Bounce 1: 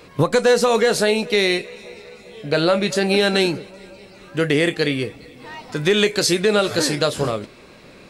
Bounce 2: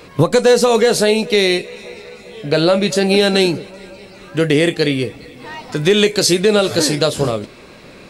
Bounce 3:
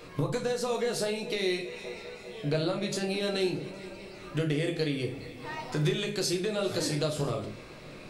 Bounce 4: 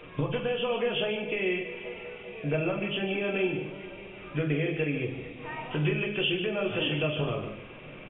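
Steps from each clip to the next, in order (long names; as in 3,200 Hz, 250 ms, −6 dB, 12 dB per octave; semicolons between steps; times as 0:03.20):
dynamic equaliser 1,500 Hz, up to −5 dB, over −34 dBFS, Q 0.87; level +5 dB
downward compressor, threshold −20 dBFS, peak gain reduction 12 dB; rectangular room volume 53 cubic metres, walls mixed, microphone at 0.49 metres; level −9 dB
hearing-aid frequency compression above 2,300 Hz 4 to 1; single-tap delay 148 ms −10 dB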